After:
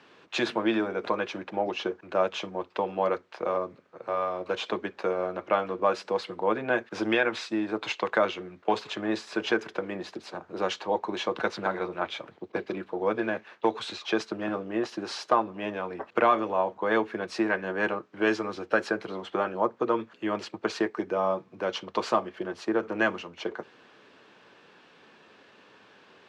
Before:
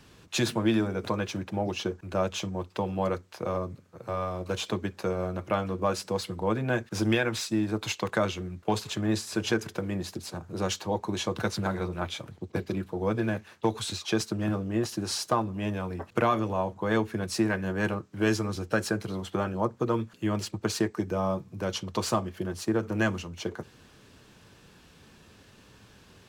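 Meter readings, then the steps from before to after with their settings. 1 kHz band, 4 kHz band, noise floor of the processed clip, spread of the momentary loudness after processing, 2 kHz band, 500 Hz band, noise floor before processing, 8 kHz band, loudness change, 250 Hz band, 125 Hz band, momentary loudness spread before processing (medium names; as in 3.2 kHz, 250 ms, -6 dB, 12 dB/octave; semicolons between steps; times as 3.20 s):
+4.0 dB, -1.5 dB, -58 dBFS, 8 LU, +3.5 dB, +2.5 dB, -56 dBFS, -11.0 dB, +0.5 dB, -2.5 dB, -13.5 dB, 7 LU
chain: band-pass 370–3000 Hz; trim +4 dB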